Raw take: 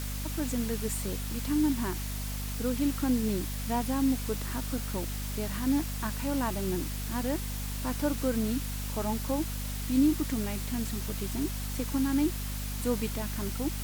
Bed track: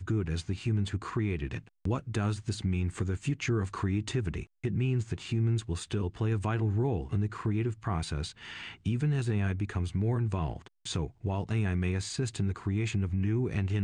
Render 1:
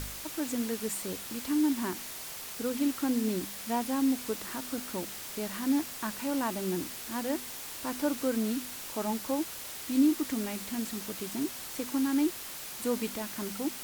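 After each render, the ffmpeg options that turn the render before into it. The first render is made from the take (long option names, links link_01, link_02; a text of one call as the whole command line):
ffmpeg -i in.wav -af "bandreject=frequency=50:width_type=h:width=4,bandreject=frequency=100:width_type=h:width=4,bandreject=frequency=150:width_type=h:width=4,bandreject=frequency=200:width_type=h:width=4,bandreject=frequency=250:width_type=h:width=4" out.wav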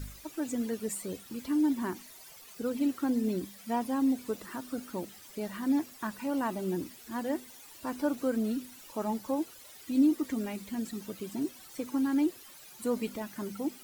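ffmpeg -i in.wav -af "afftdn=noise_reduction=14:noise_floor=-42" out.wav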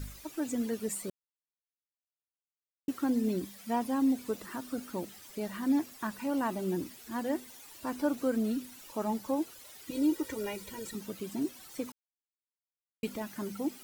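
ffmpeg -i in.wav -filter_complex "[0:a]asettb=1/sr,asplit=3[link_01][link_02][link_03];[link_01]atrim=end=9.904[link_04];[link_02]atrim=start=9.9:end=10.95,asetpts=PTS-STARTPTS,afade=type=in:duration=0.004:curve=qsin,afade=type=out:start_time=1.046:duration=0.004:curve=qsin,aecho=1:1:2.1:0.84,atrim=end_sample=46305[link_05];[link_03]atrim=start=10.946[link_06];[link_04][link_05]acrossfade=duration=0.004:curve1=hsin:curve2=qsin[link_07];[link_07][link_06]acrossfade=duration=0.004:curve1=qsin:curve2=hsin,asplit=5[link_08][link_09][link_10][link_11][link_12];[link_08]atrim=end=1.1,asetpts=PTS-STARTPTS,afade=type=out:start_time=1.096:duration=0.004:curve=hsin[link_13];[link_09]atrim=start=1.1:end=2.88,asetpts=PTS-STARTPTS,volume=0[link_14];[link_10]atrim=start=2.88:end=11.92,asetpts=PTS-STARTPTS,afade=type=in:duration=0.004:curve=hsin,afade=type=out:start_time=9.036:duration=0.004:curve=hsin[link_15];[link_11]atrim=start=11.92:end=13.03,asetpts=PTS-STARTPTS,volume=0[link_16];[link_12]atrim=start=13.03,asetpts=PTS-STARTPTS,afade=type=in:duration=0.004:curve=hsin[link_17];[link_13][link_14][link_15][link_16][link_17]concat=n=5:v=0:a=1" out.wav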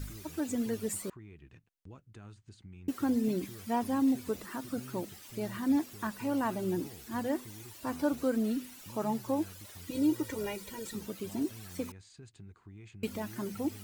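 ffmpeg -i in.wav -i bed.wav -filter_complex "[1:a]volume=-20.5dB[link_01];[0:a][link_01]amix=inputs=2:normalize=0" out.wav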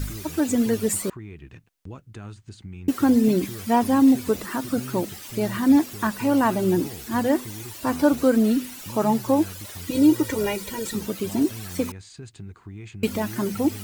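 ffmpeg -i in.wav -af "volume=11.5dB" out.wav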